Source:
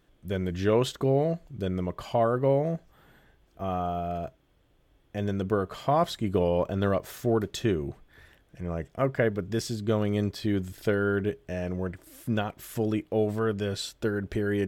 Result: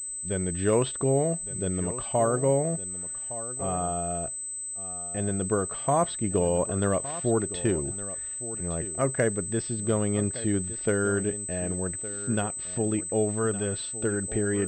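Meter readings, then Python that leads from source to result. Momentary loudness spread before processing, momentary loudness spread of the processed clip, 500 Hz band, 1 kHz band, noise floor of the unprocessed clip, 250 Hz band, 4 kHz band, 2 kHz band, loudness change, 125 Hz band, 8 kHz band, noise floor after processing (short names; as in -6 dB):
9 LU, 7 LU, 0.0 dB, 0.0 dB, -65 dBFS, 0.0 dB, -4.0 dB, 0.0 dB, +1.0 dB, 0.0 dB, +20.0 dB, -36 dBFS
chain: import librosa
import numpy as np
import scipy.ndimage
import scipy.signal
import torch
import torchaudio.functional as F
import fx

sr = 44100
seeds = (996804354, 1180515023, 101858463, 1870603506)

y = x + 10.0 ** (-14.5 / 20.0) * np.pad(x, (int(1162 * sr / 1000.0), 0))[:len(x)]
y = fx.pwm(y, sr, carrier_hz=8100.0)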